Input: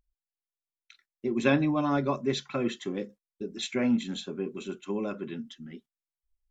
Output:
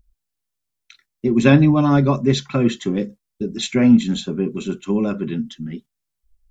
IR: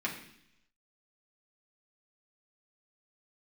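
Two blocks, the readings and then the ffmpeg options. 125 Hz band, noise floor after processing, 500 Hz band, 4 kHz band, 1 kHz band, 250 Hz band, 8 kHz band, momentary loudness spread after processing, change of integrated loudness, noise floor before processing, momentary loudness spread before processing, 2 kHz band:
+17.0 dB, −80 dBFS, +9.0 dB, +8.5 dB, +7.5 dB, +12.5 dB, can't be measured, 16 LU, +12.0 dB, below −85 dBFS, 15 LU, +7.5 dB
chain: -af "bass=frequency=250:gain=11,treble=frequency=4000:gain=3,volume=7.5dB"

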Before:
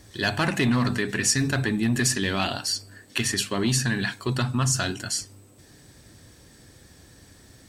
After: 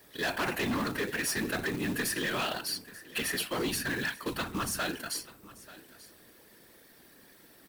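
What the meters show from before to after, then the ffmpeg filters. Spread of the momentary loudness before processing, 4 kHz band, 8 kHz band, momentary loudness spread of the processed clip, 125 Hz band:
6 LU, −7.0 dB, −10.0 dB, 11 LU, −15.5 dB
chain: -filter_complex "[0:a]acrossover=split=230 4400:gain=0.1 1 0.2[link_01][link_02][link_03];[link_01][link_02][link_03]amix=inputs=3:normalize=0,bandreject=frequency=760:width=20,acontrast=23,aexciter=amount=9.1:drive=7:freq=10000,acrusher=bits=8:mix=0:aa=0.5,afftfilt=real='hypot(re,im)*cos(2*PI*random(0))':imag='hypot(re,im)*sin(2*PI*random(1))':win_size=512:overlap=0.75,asoftclip=type=hard:threshold=-25.5dB,acrusher=bits=3:mode=log:mix=0:aa=0.000001,asplit=2[link_04][link_05];[link_05]aecho=0:1:887:0.112[link_06];[link_04][link_06]amix=inputs=2:normalize=0,volume=-1.5dB"

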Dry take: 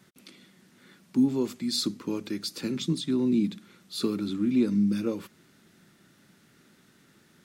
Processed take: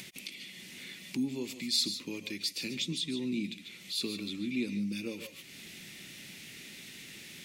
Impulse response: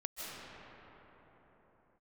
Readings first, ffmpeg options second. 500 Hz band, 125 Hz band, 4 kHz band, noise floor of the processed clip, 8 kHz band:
−10.0 dB, −9.5 dB, +2.0 dB, −51 dBFS, +1.0 dB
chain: -filter_complex "[0:a]highshelf=frequency=1800:width_type=q:width=3:gain=9[link_01];[1:a]atrim=start_sample=2205,afade=type=out:start_time=0.2:duration=0.01,atrim=end_sample=9261[link_02];[link_01][link_02]afir=irnorm=-1:irlink=0,acompressor=mode=upward:threshold=-28dB:ratio=2.5,volume=-5.5dB"

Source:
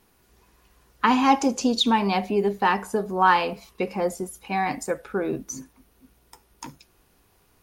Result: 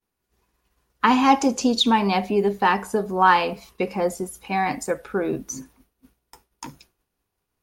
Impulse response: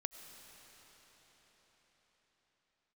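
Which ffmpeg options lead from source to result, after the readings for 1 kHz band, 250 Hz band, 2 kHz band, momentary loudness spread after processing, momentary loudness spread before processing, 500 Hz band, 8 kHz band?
+2.0 dB, +2.0 dB, +2.0 dB, 17 LU, 17 LU, +2.0 dB, +2.0 dB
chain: -af "agate=range=-33dB:threshold=-49dB:ratio=3:detection=peak,volume=2dB"

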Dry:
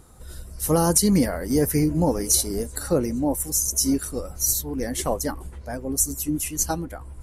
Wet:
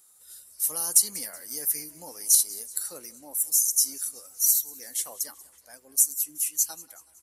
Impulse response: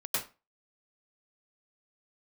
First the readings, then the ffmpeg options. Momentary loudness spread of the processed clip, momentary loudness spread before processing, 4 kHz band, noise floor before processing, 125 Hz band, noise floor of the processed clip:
14 LU, 12 LU, −3.0 dB, −40 dBFS, below −30 dB, −58 dBFS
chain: -af "aderivative,asoftclip=type=hard:threshold=-7.5dB,aecho=1:1:187|374|561|748:0.0891|0.0437|0.0214|0.0105"

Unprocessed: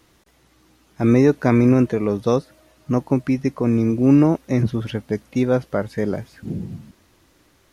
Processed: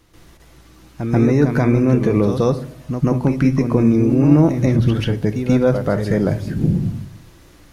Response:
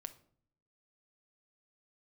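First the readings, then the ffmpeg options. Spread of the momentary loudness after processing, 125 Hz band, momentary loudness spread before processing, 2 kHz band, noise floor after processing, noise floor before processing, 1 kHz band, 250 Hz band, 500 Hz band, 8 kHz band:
8 LU, +6.0 dB, 15 LU, +2.5 dB, −47 dBFS, −58 dBFS, +1.5 dB, +2.5 dB, +2.0 dB, can't be measured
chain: -filter_complex "[0:a]lowshelf=frequency=96:gain=11,alimiter=limit=-14dB:level=0:latency=1:release=130,asplit=2[link_01][link_02];[1:a]atrim=start_sample=2205,adelay=136[link_03];[link_02][link_03]afir=irnorm=-1:irlink=0,volume=12.5dB[link_04];[link_01][link_04]amix=inputs=2:normalize=0,volume=-1dB"

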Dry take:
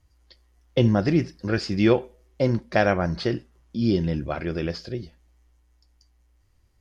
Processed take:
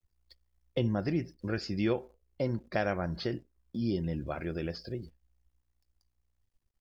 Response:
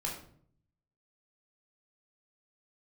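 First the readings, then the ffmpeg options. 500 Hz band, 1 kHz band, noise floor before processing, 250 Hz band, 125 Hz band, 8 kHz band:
−10.0 dB, −10.0 dB, −63 dBFS, −9.5 dB, −9.5 dB, can't be measured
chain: -af "acrusher=bits=9:dc=4:mix=0:aa=0.000001,afftdn=noise_reduction=16:noise_floor=-45,acompressor=threshold=-45dB:ratio=1.5"

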